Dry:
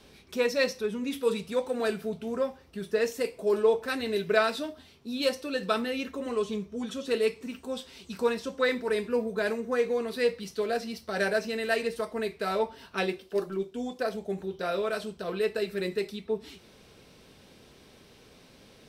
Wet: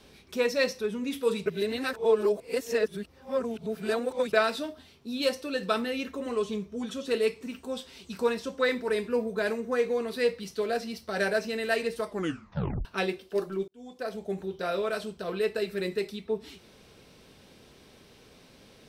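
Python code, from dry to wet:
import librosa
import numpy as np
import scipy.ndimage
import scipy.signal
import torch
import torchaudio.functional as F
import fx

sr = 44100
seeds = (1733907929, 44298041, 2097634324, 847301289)

y = fx.edit(x, sr, fx.reverse_span(start_s=1.46, length_s=2.87),
    fx.tape_stop(start_s=12.08, length_s=0.77),
    fx.fade_in_span(start_s=13.68, length_s=0.61), tone=tone)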